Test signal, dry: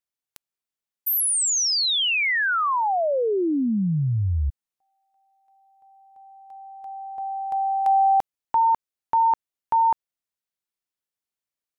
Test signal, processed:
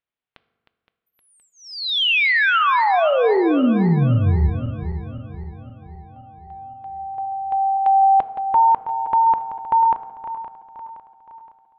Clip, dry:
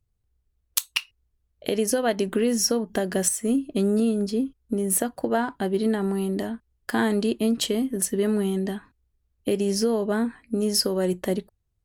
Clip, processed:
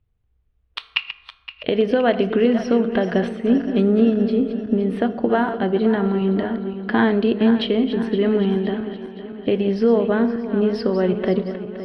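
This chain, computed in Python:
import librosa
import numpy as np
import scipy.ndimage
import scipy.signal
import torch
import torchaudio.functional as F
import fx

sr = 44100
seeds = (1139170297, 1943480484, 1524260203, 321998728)

y = fx.reverse_delay_fb(x, sr, ms=259, feedback_pct=69, wet_db=-11.0)
y = scipy.signal.sosfilt(scipy.signal.cheby2(4, 40, 6500.0, 'lowpass', fs=sr, output='sos'), y)
y = fx.rev_fdn(y, sr, rt60_s=1.2, lf_ratio=1.5, hf_ratio=0.55, size_ms=13.0, drr_db=13.0)
y = y * librosa.db_to_amplitude(5.0)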